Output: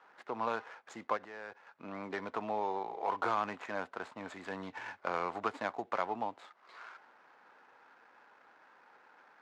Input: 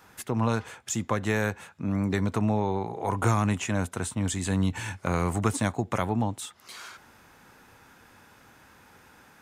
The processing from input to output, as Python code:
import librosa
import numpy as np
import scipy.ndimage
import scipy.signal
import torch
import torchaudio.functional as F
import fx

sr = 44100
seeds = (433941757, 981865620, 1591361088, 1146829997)

y = scipy.ndimage.median_filter(x, 15, mode='constant')
y = fx.level_steps(y, sr, step_db=19, at=(1.17, 1.67))
y = fx.bandpass_edges(y, sr, low_hz=580.0, high_hz=3600.0)
y = F.gain(torch.from_numpy(y), -2.0).numpy()